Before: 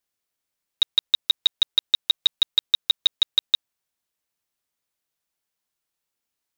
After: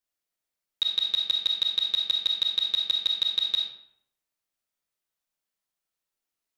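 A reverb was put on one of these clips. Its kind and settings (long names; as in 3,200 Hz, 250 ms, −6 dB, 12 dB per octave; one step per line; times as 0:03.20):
comb and all-pass reverb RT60 0.71 s, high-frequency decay 0.7×, pre-delay 5 ms, DRR 0.5 dB
level −6.5 dB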